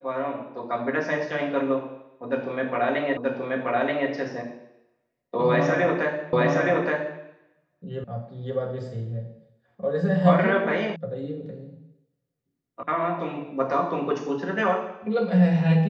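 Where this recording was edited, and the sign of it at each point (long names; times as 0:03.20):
0:03.17: the same again, the last 0.93 s
0:06.33: the same again, the last 0.87 s
0:08.04: cut off before it has died away
0:10.96: cut off before it has died away
0:12.83: cut off before it has died away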